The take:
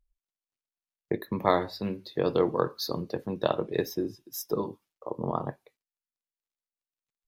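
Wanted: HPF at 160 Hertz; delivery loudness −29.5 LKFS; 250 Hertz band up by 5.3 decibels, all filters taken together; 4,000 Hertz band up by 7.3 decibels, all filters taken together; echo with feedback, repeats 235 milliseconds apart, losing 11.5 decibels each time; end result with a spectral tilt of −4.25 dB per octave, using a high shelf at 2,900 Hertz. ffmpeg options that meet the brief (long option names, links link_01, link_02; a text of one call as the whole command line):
ffmpeg -i in.wav -af "highpass=160,equalizer=frequency=250:width_type=o:gain=8.5,highshelf=frequency=2900:gain=5,equalizer=frequency=4000:width_type=o:gain=4.5,aecho=1:1:235|470|705:0.266|0.0718|0.0194,volume=-2.5dB" out.wav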